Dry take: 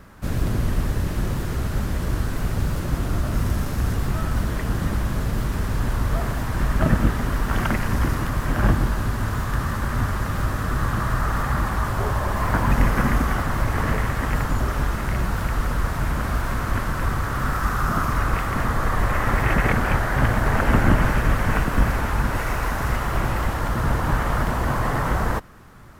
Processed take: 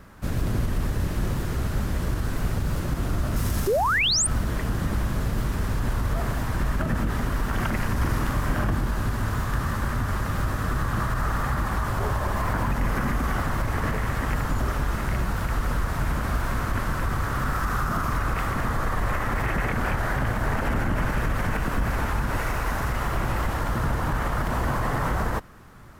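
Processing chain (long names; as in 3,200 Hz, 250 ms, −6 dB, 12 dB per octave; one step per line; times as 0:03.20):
0:03.36–0:03.99: high-shelf EQ 3,500 Hz +8.5 dB
0:03.67–0:04.27: sound drawn into the spectrogram rise 360–9,600 Hz −13 dBFS
brickwall limiter −14.5 dBFS, peak gain reduction 9 dB
0:07.97–0:08.67: double-tracking delay 43 ms −4 dB
level −1.5 dB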